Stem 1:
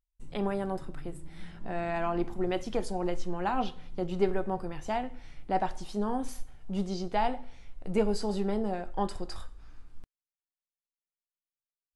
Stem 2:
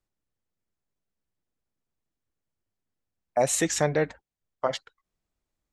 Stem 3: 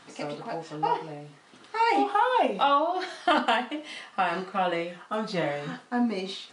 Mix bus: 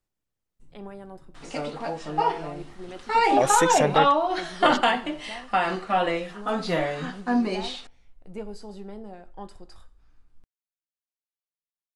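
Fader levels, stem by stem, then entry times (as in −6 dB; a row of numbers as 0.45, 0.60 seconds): −9.5, +0.5, +3.0 decibels; 0.40, 0.00, 1.35 seconds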